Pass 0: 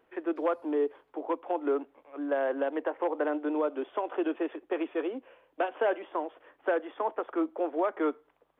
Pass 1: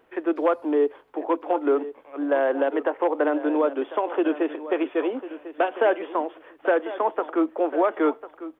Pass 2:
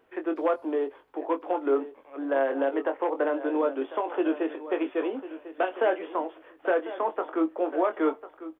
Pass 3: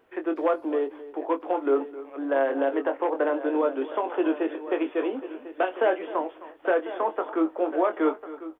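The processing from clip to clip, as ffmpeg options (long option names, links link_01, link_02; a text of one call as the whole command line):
ffmpeg -i in.wav -af "aecho=1:1:1048|2096:0.2|0.0359,volume=7dB" out.wav
ffmpeg -i in.wav -filter_complex "[0:a]asplit=2[link_01][link_02];[link_02]adelay=22,volume=-7.5dB[link_03];[link_01][link_03]amix=inputs=2:normalize=0,volume=-4.5dB" out.wav
ffmpeg -i in.wav -filter_complex "[0:a]asplit=2[link_01][link_02];[link_02]adelay=262.4,volume=-16dB,highshelf=frequency=4000:gain=-5.9[link_03];[link_01][link_03]amix=inputs=2:normalize=0,volume=1.5dB" out.wav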